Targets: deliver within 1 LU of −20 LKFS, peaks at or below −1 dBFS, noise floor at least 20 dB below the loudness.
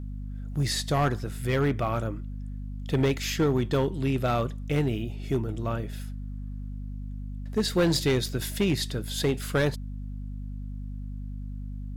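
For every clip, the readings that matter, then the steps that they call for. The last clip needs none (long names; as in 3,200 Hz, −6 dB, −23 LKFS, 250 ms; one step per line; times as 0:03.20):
share of clipped samples 1.2%; peaks flattened at −18.0 dBFS; mains hum 50 Hz; hum harmonics up to 250 Hz; level of the hum −33 dBFS; integrated loudness −29.0 LKFS; sample peak −18.0 dBFS; target loudness −20.0 LKFS
→ clipped peaks rebuilt −18 dBFS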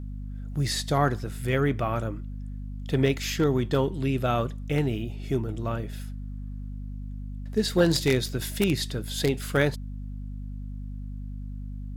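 share of clipped samples 0.0%; mains hum 50 Hz; hum harmonics up to 250 Hz; level of the hum −33 dBFS
→ mains-hum notches 50/100/150/200/250 Hz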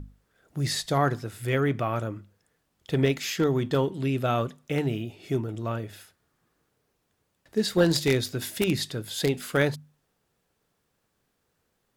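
mains hum none found; integrated loudness −27.0 LKFS; sample peak −9.0 dBFS; target loudness −20.0 LKFS
→ level +7 dB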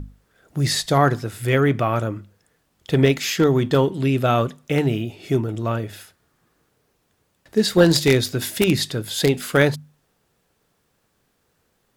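integrated loudness −20.0 LKFS; sample peak −2.0 dBFS; background noise floor −68 dBFS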